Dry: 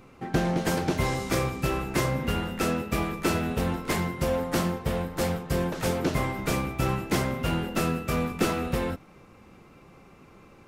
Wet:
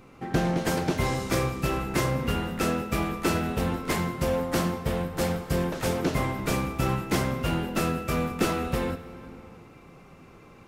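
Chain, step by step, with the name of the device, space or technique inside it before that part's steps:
compressed reverb return (on a send at −3 dB: convolution reverb RT60 1.6 s, pre-delay 49 ms + downward compressor 6 to 1, threshold −35 dBFS, peak gain reduction 13.5 dB)

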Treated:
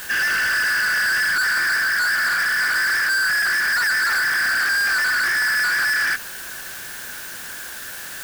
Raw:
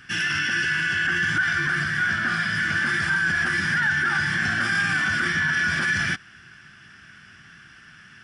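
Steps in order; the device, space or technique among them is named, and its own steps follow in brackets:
drive-through speaker (band-pass filter 480–3,000 Hz; parametric band 1,600 Hz +10 dB 0.51 octaves; hard clipping −21.5 dBFS, distortion −6 dB; white noise bed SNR 14 dB)
level +3 dB

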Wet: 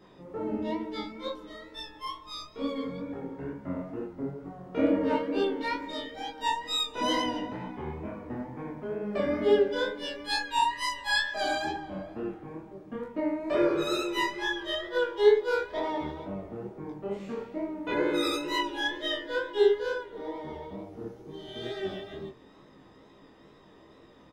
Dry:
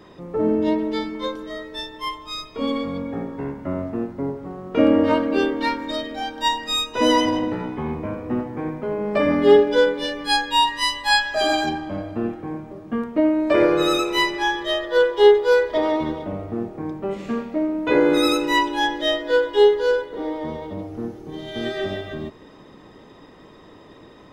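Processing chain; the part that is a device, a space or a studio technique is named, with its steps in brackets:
double-tracked vocal (double-tracking delay 15 ms −5 dB; chorus effect 2.2 Hz, delay 20 ms, depth 7.5 ms)
level −7 dB

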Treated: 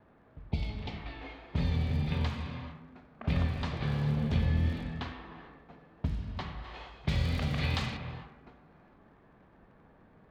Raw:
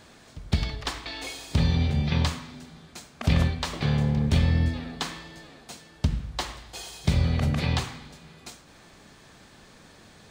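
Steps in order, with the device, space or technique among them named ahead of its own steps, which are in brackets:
lo-fi chain (low-pass filter 3,300 Hz 12 dB per octave; tape wow and flutter; surface crackle 66 per second −37 dBFS)
0:00.47–0:01.01: healed spectral selection 930–2,000 Hz both
reverb whose tail is shaped and stops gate 480 ms flat, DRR 3 dB
low-pass that shuts in the quiet parts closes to 1,200 Hz, open at −19 dBFS
0:06.64–0:07.97: high-shelf EQ 2,100 Hz +10 dB
level −8 dB

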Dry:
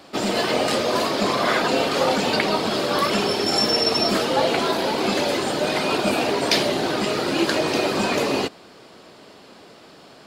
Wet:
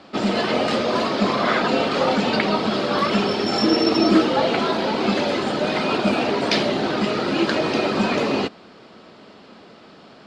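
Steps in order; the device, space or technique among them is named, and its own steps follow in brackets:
0:03.63–0:04.30: parametric band 320 Hz +15 dB 0.24 octaves
inside a cardboard box (low-pass filter 4,600 Hz 12 dB per octave; hollow resonant body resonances 210/1,300 Hz, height 6 dB)

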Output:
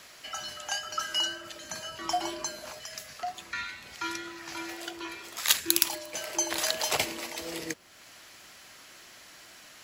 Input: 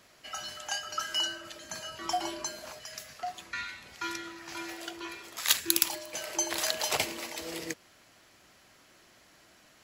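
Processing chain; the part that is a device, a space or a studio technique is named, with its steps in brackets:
noise-reduction cassette on a plain deck (one half of a high-frequency compander encoder only; tape wow and flutter 20 cents; white noise bed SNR 40 dB)
level +1.5 dB

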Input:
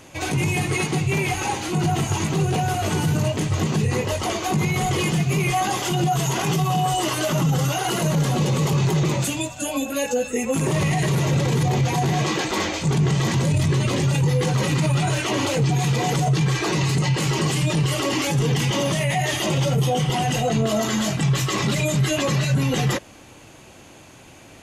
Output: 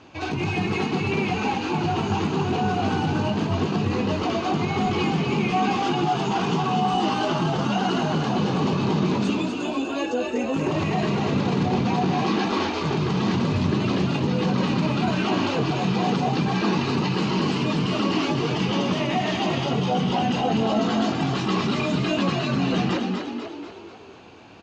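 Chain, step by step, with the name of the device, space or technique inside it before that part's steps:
frequency-shifting delay pedal into a guitar cabinet (echo with shifted repeats 245 ms, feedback 53%, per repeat +51 Hz, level −5 dB; loudspeaker in its box 79–4,400 Hz, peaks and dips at 140 Hz −10 dB, 550 Hz −7 dB, 2,000 Hz −9 dB, 3,400 Hz −5 dB)

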